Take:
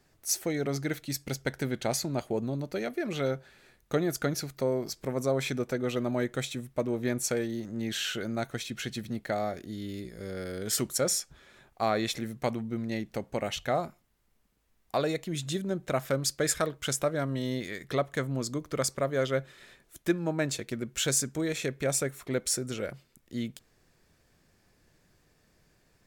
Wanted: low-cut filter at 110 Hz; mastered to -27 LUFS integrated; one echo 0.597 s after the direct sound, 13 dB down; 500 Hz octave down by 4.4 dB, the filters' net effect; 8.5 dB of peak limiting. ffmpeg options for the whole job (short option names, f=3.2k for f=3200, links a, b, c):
-af "highpass=110,equalizer=f=500:t=o:g=-5.5,alimiter=limit=-21.5dB:level=0:latency=1,aecho=1:1:597:0.224,volume=7.5dB"